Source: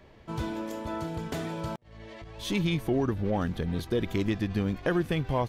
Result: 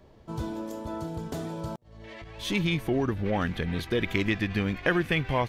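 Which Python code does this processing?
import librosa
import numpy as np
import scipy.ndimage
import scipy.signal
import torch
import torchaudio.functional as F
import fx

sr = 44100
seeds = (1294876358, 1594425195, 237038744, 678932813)

y = fx.peak_eq(x, sr, hz=2200.0, db=fx.steps((0.0, -9.0), (2.04, 5.0), (3.26, 11.0)), octaves=1.3)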